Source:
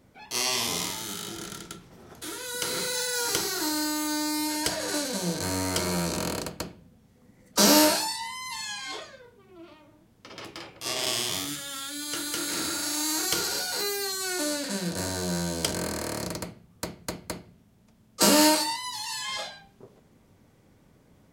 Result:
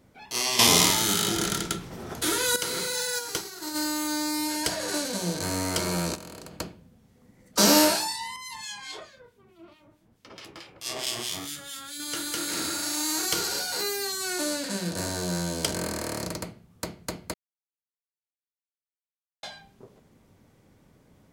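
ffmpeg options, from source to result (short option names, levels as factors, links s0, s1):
-filter_complex "[0:a]asplit=3[s0][s1][s2];[s0]afade=t=out:st=3.18:d=0.02[s3];[s1]agate=range=0.0224:threshold=0.0708:ratio=3:release=100:detection=peak,afade=t=in:st=3.18:d=0.02,afade=t=out:st=3.74:d=0.02[s4];[s2]afade=t=in:st=3.74:d=0.02[s5];[s3][s4][s5]amix=inputs=3:normalize=0,asplit=3[s6][s7][s8];[s6]afade=t=out:st=6.14:d=0.02[s9];[s7]acompressor=threshold=0.0126:ratio=10:attack=3.2:release=140:knee=1:detection=peak,afade=t=in:st=6.14:d=0.02,afade=t=out:st=6.57:d=0.02[s10];[s8]afade=t=in:st=6.57:d=0.02[s11];[s9][s10][s11]amix=inputs=3:normalize=0,asettb=1/sr,asplit=3[s12][s13][s14];[s12]atrim=end=8.364[s15];[s13]atrim=start=8.36:end=12,asetpts=PTS-STARTPTS,afade=t=in:d=0.004:c=qsin,afade=t=out:st=3.636:d=0.004:c=qsin,acrossover=split=1900[s16][s17];[s16]aeval=exprs='val(0)*(1-0.7/2+0.7/2*cos(2*PI*4.6*n/s))':c=same[s18];[s17]aeval=exprs='val(0)*(1-0.7/2-0.7/2*cos(2*PI*4.6*n/s))':c=same[s19];[s18][s19]amix=inputs=2:normalize=0[s20];[s14]atrim=start=11.996[s21];[s15][s20]acrossfade=d=0.004:c1=hsin:c2=qsin[s22];[s22][s21]acrossfade=d=0.004:c1=qsin:c2=hsin,asplit=5[s23][s24][s25][s26][s27];[s23]atrim=end=0.592[s28];[s24]atrim=start=0.588:end=2.562,asetpts=PTS-STARTPTS,volume=3.55[s29];[s25]atrim=start=2.558:end=17.34,asetpts=PTS-STARTPTS,afade=t=out:st=14.778:d=0.004:c=hsin[s30];[s26]atrim=start=17.34:end=19.43,asetpts=PTS-STARTPTS,volume=0[s31];[s27]atrim=start=19.43,asetpts=PTS-STARTPTS,afade=t=in:d=0.004:c=hsin[s32];[s28][s29]acrossfade=d=0.004:c1=hsin:c2=hsin[s33];[s30][s31][s32]concat=n=3:v=0:a=1[s34];[s33][s34]acrossfade=d=0.004:c1=hsin:c2=hsin"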